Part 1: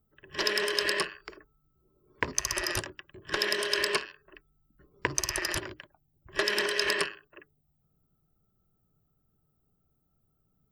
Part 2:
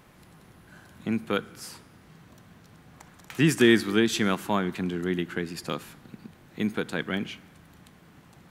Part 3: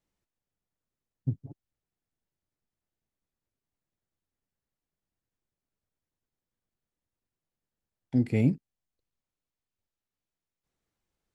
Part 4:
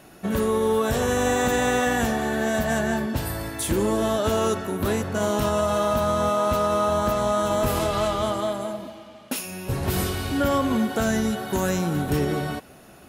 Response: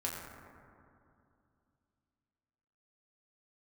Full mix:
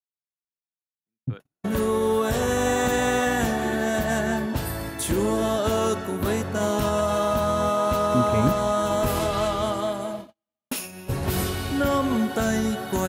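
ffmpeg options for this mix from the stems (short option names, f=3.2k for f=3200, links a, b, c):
-filter_complex "[1:a]lowpass=f=3.5k:p=1,volume=-17.5dB[a];[2:a]volume=1dB[b];[3:a]adelay=1400,volume=-0.5dB[c];[a][b][c]amix=inputs=3:normalize=0,agate=range=-46dB:threshold=-34dB:ratio=16:detection=peak"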